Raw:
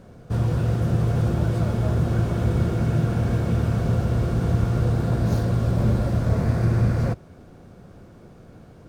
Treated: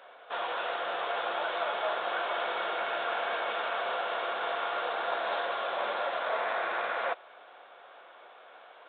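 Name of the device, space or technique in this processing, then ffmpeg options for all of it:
musical greeting card: -af "aresample=8000,aresample=44100,highpass=frequency=700:width=0.5412,highpass=frequency=700:width=1.3066,equalizer=frequency=3500:width_type=o:width=0.47:gain=4,volume=6.5dB"

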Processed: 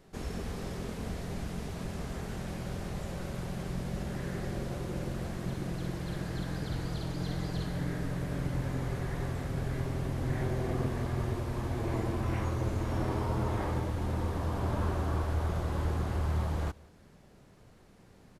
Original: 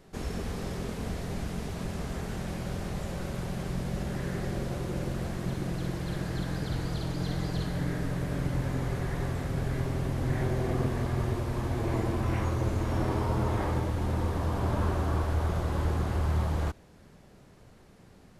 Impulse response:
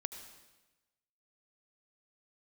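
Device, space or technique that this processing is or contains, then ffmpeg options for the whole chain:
ducked delay: -filter_complex "[0:a]asplit=3[link_01][link_02][link_03];[link_02]adelay=178,volume=-4dB[link_04];[link_03]apad=whole_len=818949[link_05];[link_04][link_05]sidechaincompress=threshold=-48dB:ratio=8:attack=16:release=1200[link_06];[link_01][link_06]amix=inputs=2:normalize=0,volume=-3dB"

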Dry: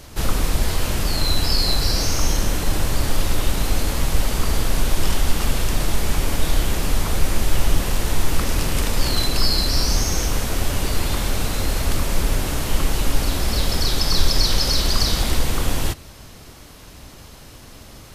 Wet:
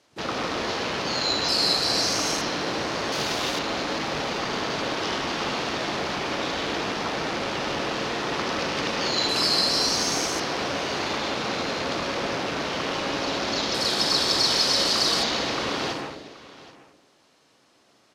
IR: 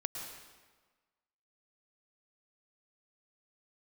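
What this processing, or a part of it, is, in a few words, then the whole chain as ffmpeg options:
supermarket ceiling speaker: -filter_complex "[0:a]highpass=280,lowpass=6600[link_01];[1:a]atrim=start_sample=2205[link_02];[link_01][link_02]afir=irnorm=-1:irlink=0,afwtdn=0.0178,asettb=1/sr,asplit=3[link_03][link_04][link_05];[link_03]atrim=end=3.124[link_06];[link_04]atrim=start=3.12:end=3.59,asetpts=PTS-STARTPTS,afade=type=in:duration=0.004:curve=qsin,afade=type=out:start_time=0.466:duration=0.004:curve=qsin,aemphasis=mode=production:type=50fm[link_07];[link_05]atrim=start=3.586[link_08];[link_06][link_07]acrossfade=duration=0.004:curve1=hsin:curve2=qsin[link_09];[link_09][link_08]acrossfade=duration=0.004:curve1=qsin:curve2=hsin,aecho=1:1:777:0.119,volume=1dB"

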